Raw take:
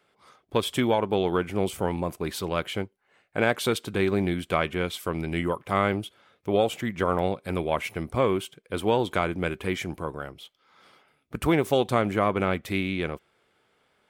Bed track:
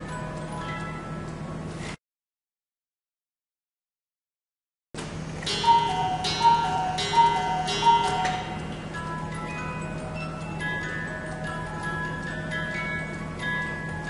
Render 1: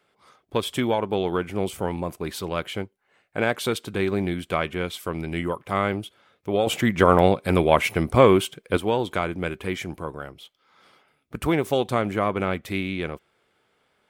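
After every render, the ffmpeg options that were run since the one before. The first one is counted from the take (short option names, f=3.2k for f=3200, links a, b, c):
-filter_complex "[0:a]asplit=3[a][b][c];[a]atrim=end=6.672[d];[b]atrim=start=6.668:end=8.772,asetpts=PTS-STARTPTS,volume=8.5dB[e];[c]atrim=start=8.768[f];[d][e]acrossfade=d=0.004:c1=hsin:c2=hsin[g];[g][f]acrossfade=d=0.004:c1=hsin:c2=hsin"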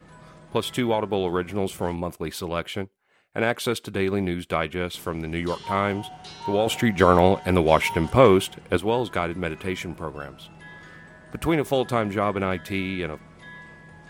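-filter_complex "[1:a]volume=-14.5dB[a];[0:a][a]amix=inputs=2:normalize=0"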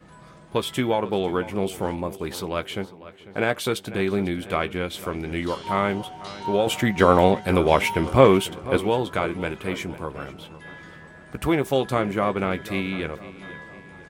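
-filter_complex "[0:a]asplit=2[a][b];[b]adelay=15,volume=-11dB[c];[a][c]amix=inputs=2:normalize=0,asplit=2[d][e];[e]adelay=497,lowpass=f=4.6k:p=1,volume=-16dB,asplit=2[f][g];[g]adelay=497,lowpass=f=4.6k:p=1,volume=0.49,asplit=2[h][i];[i]adelay=497,lowpass=f=4.6k:p=1,volume=0.49,asplit=2[j][k];[k]adelay=497,lowpass=f=4.6k:p=1,volume=0.49[l];[d][f][h][j][l]amix=inputs=5:normalize=0"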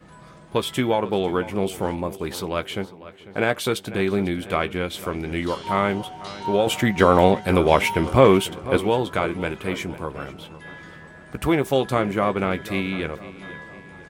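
-af "volume=1.5dB,alimiter=limit=-2dB:level=0:latency=1"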